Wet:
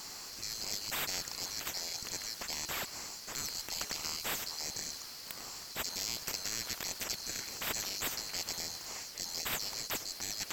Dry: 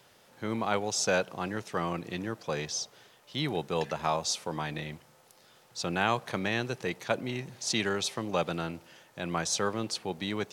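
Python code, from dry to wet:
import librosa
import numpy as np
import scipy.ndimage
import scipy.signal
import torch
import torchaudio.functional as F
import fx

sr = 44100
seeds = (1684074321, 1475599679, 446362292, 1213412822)

y = fx.band_swap(x, sr, width_hz=4000)
y = fx.spectral_comp(y, sr, ratio=4.0)
y = y * 10.0 ** (-6.5 / 20.0)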